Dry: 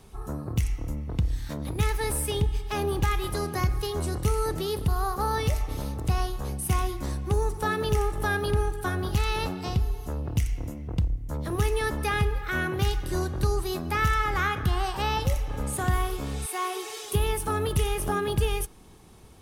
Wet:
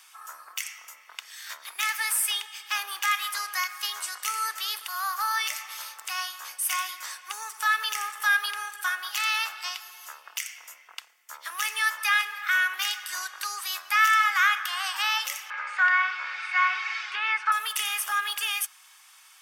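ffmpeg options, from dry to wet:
ffmpeg -i in.wav -filter_complex "[0:a]asettb=1/sr,asplit=3[link_01][link_02][link_03];[link_01]atrim=end=15.504[link_04];[link_02]atrim=start=15.5:end=17.52,asetpts=PTS-STARTPTS,afade=type=in:duration=0.004:curve=qsin,afade=type=out:start_time=2.016:duration=0.004:curve=qsin,highpass=140,equalizer=frequency=210:width_type=q:width=4:gain=-9,equalizer=frequency=570:width_type=q:width=4:gain=4,equalizer=frequency=1000:width_type=q:width=4:gain=4,equalizer=frequency=1500:width_type=q:width=4:gain=10,equalizer=frequency=2200:width_type=q:width=4:gain=8,equalizer=frequency=3300:width_type=q:width=4:gain=-8,lowpass=frequency=4100:width=0.5412,lowpass=frequency=4100:width=1.3066[link_05];[link_03]atrim=start=17.516[link_06];[link_04][link_05]acrossfade=duration=0.004:curve1=hsin:curve2=qsin[link_07];[link_07][link_06]acrossfade=duration=0.004:curve1=qsin:curve2=hsin,highpass=frequency=1300:width=0.5412,highpass=frequency=1300:width=1.3066,equalizer=frequency=10000:width=6.8:gain=-8,bandreject=frequency=4000:width=9.2,volume=8.5dB" out.wav

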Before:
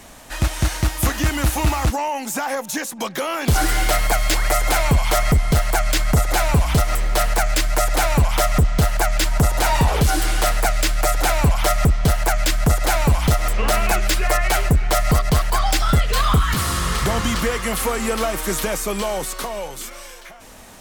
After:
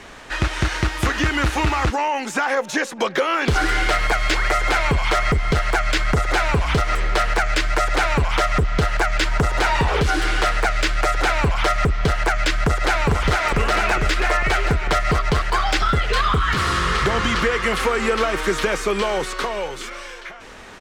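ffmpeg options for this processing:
ffmpeg -i in.wav -filter_complex "[0:a]asettb=1/sr,asplit=3[link_01][link_02][link_03];[link_01]atrim=end=2.574[link_04];[link_02]atrim=start=2.57:end=3.23,asetpts=PTS-STARTPTS,afade=type=in:duration=0.004:curve=qsin,afade=type=out:start_time=0.656:duration=0.004:curve=qsin,equalizer=frequency=570:width=1.9:gain=6[link_05];[link_03]atrim=start=3.226[link_06];[link_04][link_05]acrossfade=duration=0.004:curve1=hsin:curve2=qsin[link_07];[link_07][link_06]acrossfade=duration=0.004:curve1=qsin:curve2=hsin,asplit=2[link_08][link_09];[link_09]afade=type=in:start_time=12.64:duration=0.01,afade=type=out:start_time=13.07:duration=0.01,aecho=0:1:450|900|1350|1800|2250|2700|3150|3600|4050|4500|4950|5400:1|0.7|0.49|0.343|0.2401|0.16807|0.117649|0.0823543|0.057648|0.0403536|0.0282475|0.0197733[link_10];[link_08][link_10]amix=inputs=2:normalize=0,firequalizer=gain_entry='entry(260,0);entry(390,8);entry(630,0);entry(1400,8);entry(13000,-18)':delay=0.05:min_phase=1,acompressor=threshold=-15dB:ratio=6" out.wav

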